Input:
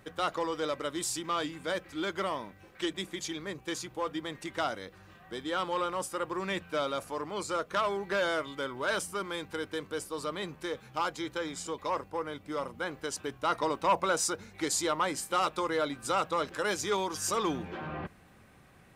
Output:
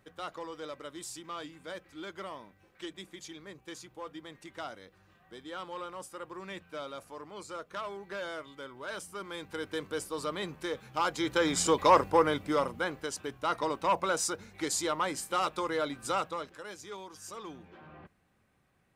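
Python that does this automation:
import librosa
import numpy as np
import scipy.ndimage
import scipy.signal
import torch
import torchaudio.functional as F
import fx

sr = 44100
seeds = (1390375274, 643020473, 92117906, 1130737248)

y = fx.gain(x, sr, db=fx.line((8.92, -9.0), (9.79, 0.5), (10.95, 0.5), (11.62, 11.0), (12.22, 11.0), (13.14, -1.5), (16.16, -1.5), (16.64, -13.5)))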